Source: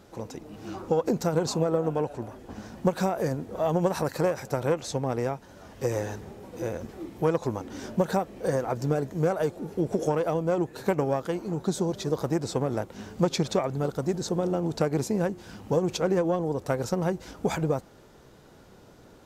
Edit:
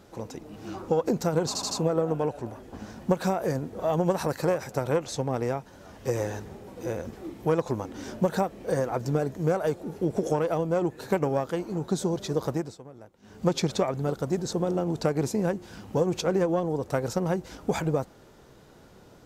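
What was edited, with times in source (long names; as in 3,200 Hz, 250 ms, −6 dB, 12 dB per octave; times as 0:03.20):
0:01.47: stutter 0.08 s, 4 plays
0:12.26–0:13.25: duck −18.5 dB, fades 0.27 s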